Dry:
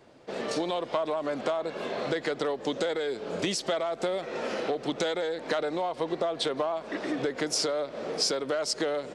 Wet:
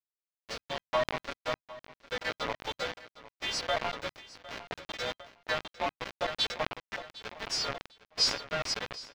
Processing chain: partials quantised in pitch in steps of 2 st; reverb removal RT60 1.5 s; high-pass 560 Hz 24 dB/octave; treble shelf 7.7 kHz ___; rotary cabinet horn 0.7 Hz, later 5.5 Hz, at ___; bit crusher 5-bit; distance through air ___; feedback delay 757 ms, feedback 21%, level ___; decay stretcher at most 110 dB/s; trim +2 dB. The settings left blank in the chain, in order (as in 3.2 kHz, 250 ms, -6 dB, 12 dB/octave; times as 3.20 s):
+9.5 dB, 3.76 s, 230 m, -18 dB